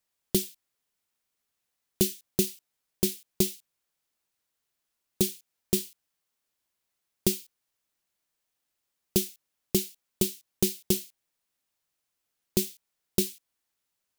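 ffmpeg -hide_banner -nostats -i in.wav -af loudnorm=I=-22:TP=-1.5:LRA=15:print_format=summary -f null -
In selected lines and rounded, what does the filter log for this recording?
Input Integrated:    -29.8 LUFS
Input True Peak:      -7.1 dBTP
Input LRA:             4.3 LU
Input Threshold:     -40.6 LUFS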